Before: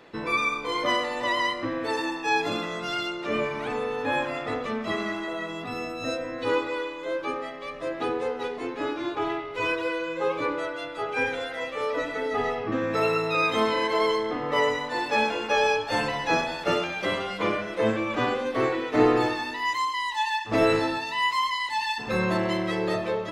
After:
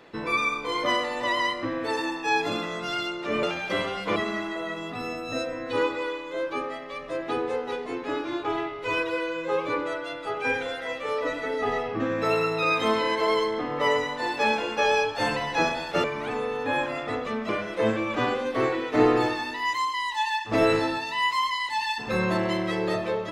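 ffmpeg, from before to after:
-filter_complex "[0:a]asplit=5[a][b][c][d][e];[a]atrim=end=3.432[f];[b]atrim=start=16.758:end=17.492[g];[c]atrim=start=4.878:end=16.762[h];[d]atrim=start=3.428:end=4.882[i];[e]atrim=start=17.488[j];[f][g]acrossfade=d=0.004:c1=hsin:c2=hsin[k];[k][h]acrossfade=d=0.004:c1=hsin:c2=hsin[l];[l][i]acrossfade=d=0.004:c1=hsin:c2=hsin[m];[m][j]acrossfade=d=0.004:c1=hsin:c2=hsin"

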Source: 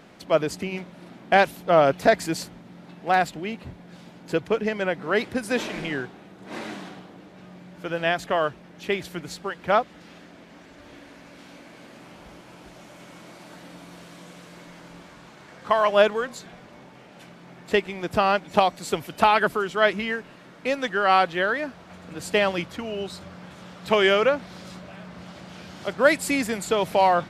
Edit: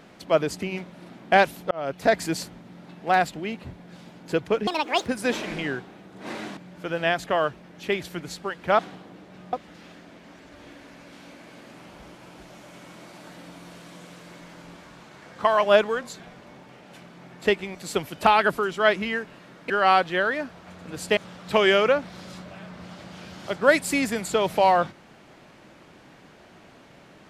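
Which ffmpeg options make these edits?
-filter_complex "[0:a]asplit=10[a][b][c][d][e][f][g][h][i][j];[a]atrim=end=1.71,asetpts=PTS-STARTPTS,afade=t=out:st=1.706:d=0.004:c=hsin[k];[b]atrim=start=1.71:end=4.674,asetpts=PTS-STARTPTS,afade=t=in:d=0.49[l];[c]atrim=start=4.67:end=5.32,asetpts=PTS-STARTPTS,asetrate=73647,aresample=44100[m];[d]atrim=start=5.316:end=6.832[n];[e]atrim=start=7.568:end=9.792[o];[f]atrim=start=6.828:end=7.572[p];[g]atrim=start=9.788:end=18.012[q];[h]atrim=start=18.718:end=20.672[r];[i]atrim=start=20.928:end=22.402[s];[j]atrim=start=23.538[t];[k][l]concat=n=2:v=0:a=1[u];[u][m]acrossfade=d=0.004:c1=hsin:c2=hsin[v];[v][n]acrossfade=d=0.004:c1=hsin:c2=hsin[w];[w][o]acrossfade=d=0.004:c1=hsin:c2=hsin[x];[x][p]acrossfade=d=0.004:c1=hsin:c2=hsin[y];[y][q]acrossfade=d=0.004:c1=hsin:c2=hsin[z];[z][r]acrossfade=d=0.004:c1=hsin:c2=hsin[aa];[aa][s]acrossfade=d=0.004:c1=hsin:c2=hsin[ab];[ab][t]acrossfade=d=0.004:c1=hsin:c2=hsin"

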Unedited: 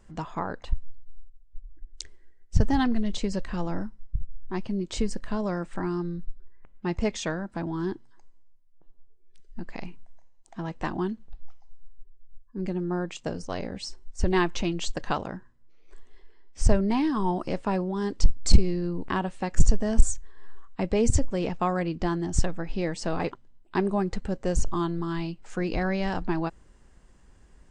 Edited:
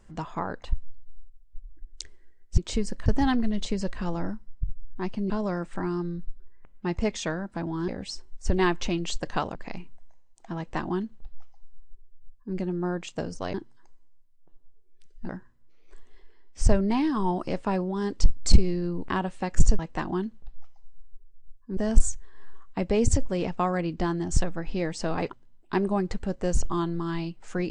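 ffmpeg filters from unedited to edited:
-filter_complex "[0:a]asplit=10[a][b][c][d][e][f][g][h][i][j];[a]atrim=end=2.582[k];[b]atrim=start=4.818:end=5.302[l];[c]atrim=start=2.578:end=4.822[m];[d]atrim=start=5.298:end=7.882[n];[e]atrim=start=13.618:end=15.292[o];[f]atrim=start=9.628:end=13.622[p];[g]atrim=start=7.878:end=9.632[q];[h]atrim=start=15.288:end=19.792[r];[i]atrim=start=10.648:end=12.632[s];[j]atrim=start=19.788[t];[k][l]acrossfade=d=0.004:c1=hsin:c2=hsin[u];[u][m]acrossfade=d=0.004:c1=hsin:c2=hsin[v];[v][n]acrossfade=d=0.004:c1=hsin:c2=hsin[w];[w][o]acrossfade=d=0.004:c1=hsin:c2=hsin[x];[x][p]acrossfade=d=0.004:c1=hsin:c2=hsin[y];[y][q]acrossfade=d=0.004:c1=hsin:c2=hsin[z];[z][r]acrossfade=d=0.004:c1=hsin:c2=hsin[aa];[aa][s]acrossfade=d=0.004:c1=hsin:c2=hsin[ab];[ab][t]acrossfade=d=0.004:c1=hsin:c2=hsin"

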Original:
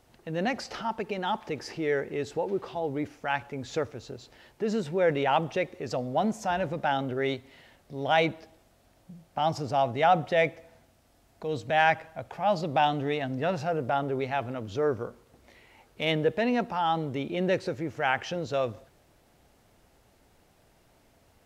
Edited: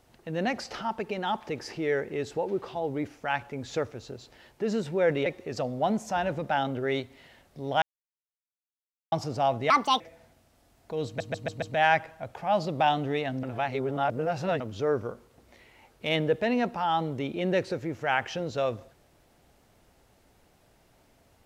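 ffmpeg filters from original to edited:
-filter_complex "[0:a]asplit=12[a][b][c][d][e][f][g][h][i][j][k][l];[a]atrim=end=5.262[m];[b]atrim=start=5.598:end=8.16,asetpts=PTS-STARTPTS,afade=t=out:st=2.558:d=0.004:c=hsin[n];[c]atrim=start=8.16:end=9.46,asetpts=PTS-STARTPTS,volume=0[o];[d]atrim=start=9.46:end=10.044,asetpts=PTS-STARTPTS,afade=t=in:d=0.004:c=hsin[p];[e]atrim=start=10.04:end=10.52,asetpts=PTS-STARTPTS,asetrate=70119,aresample=44100,atrim=end_sample=13313,asetpts=PTS-STARTPTS[q];[f]atrim=start=10.516:end=11.722[r];[g]atrim=start=11.578:end=11.722[s];[h]atrim=start=11.578:end=11.722[t];[i]atrim=start=11.578:end=11.722[u];[j]atrim=start=11.578:end=13.392[v];[k]atrim=start=13.388:end=14.562,asetpts=PTS-STARTPTS,areverse[w];[l]atrim=start=14.558[x];[n][o][p]concat=n=3:v=0:a=1[y];[m][y]acrossfade=d=0.004:c1=hsin:c2=hsin[z];[z][q]acrossfade=d=0.004:c1=hsin:c2=hsin[aa];[aa][r]acrossfade=d=0.004:c1=hsin:c2=hsin[ab];[ab][s]acrossfade=d=0.004:c1=hsin:c2=hsin[ac];[ac][t]acrossfade=d=0.004:c1=hsin:c2=hsin[ad];[ad][u]acrossfade=d=0.004:c1=hsin:c2=hsin[ae];[ae][v]acrossfade=d=0.004:c1=hsin:c2=hsin[af];[af][w]acrossfade=d=0.004:c1=hsin:c2=hsin[ag];[ag][x]acrossfade=d=0.004:c1=hsin:c2=hsin"

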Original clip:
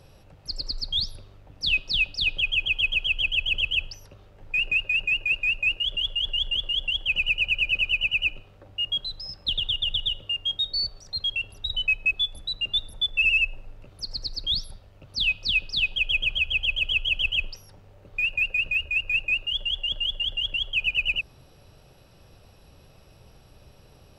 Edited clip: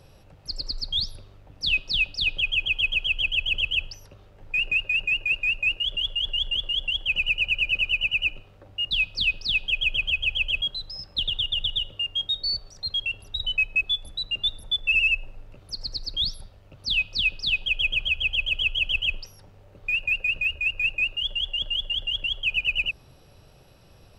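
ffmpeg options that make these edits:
-filter_complex "[0:a]asplit=3[a][b][c];[a]atrim=end=8.912[d];[b]atrim=start=15.188:end=16.892[e];[c]atrim=start=8.908[f];[d][e]acrossfade=d=0.004:c1=hsin:c2=hsin[g];[g][f]acrossfade=d=0.004:c1=hsin:c2=hsin"

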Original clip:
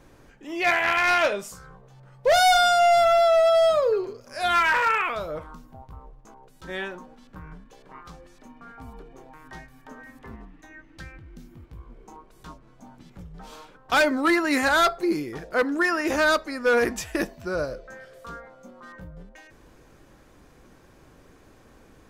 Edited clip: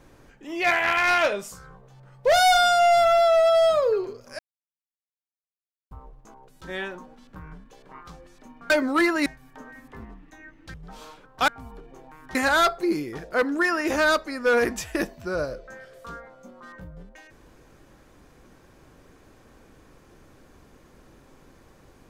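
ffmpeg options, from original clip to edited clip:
-filter_complex "[0:a]asplit=8[a][b][c][d][e][f][g][h];[a]atrim=end=4.39,asetpts=PTS-STARTPTS,afade=t=out:st=4.386:d=0.004:c=hsin[i];[b]atrim=start=4.39:end=5.91,asetpts=PTS-STARTPTS,volume=0[j];[c]atrim=start=5.91:end=8.702,asetpts=PTS-STARTPTS,afade=t=in:d=0.004:c=hsin[k];[d]atrim=start=13.988:end=14.552[l];[e]atrim=start=9.568:end=11.052[m];[f]atrim=start=13.248:end=13.992[n];[g]atrim=start=8.698:end=9.572[o];[h]atrim=start=14.548[p];[i][j][k]concat=n=3:v=0:a=1[q];[q][l]acrossfade=d=0.004:c1=hsin:c2=hsin[r];[r][m]acrossfade=d=0.004:c1=hsin:c2=hsin[s];[s][n]acrossfade=d=0.004:c1=hsin:c2=hsin[t];[t][o]acrossfade=d=0.004:c1=hsin:c2=hsin[u];[u][p]acrossfade=d=0.004:c1=hsin:c2=hsin"

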